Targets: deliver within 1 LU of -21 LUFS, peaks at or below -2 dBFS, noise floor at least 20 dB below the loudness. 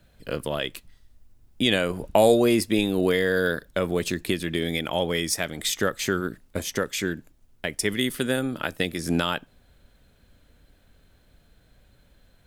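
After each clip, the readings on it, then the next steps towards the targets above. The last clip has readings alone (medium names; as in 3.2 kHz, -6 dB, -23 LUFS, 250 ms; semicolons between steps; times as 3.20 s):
loudness -25.0 LUFS; peak level -4.0 dBFS; loudness target -21.0 LUFS
-> trim +4 dB; peak limiter -2 dBFS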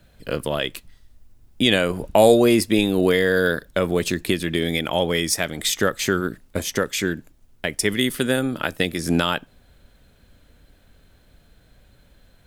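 loudness -21.0 LUFS; peak level -2.0 dBFS; noise floor -56 dBFS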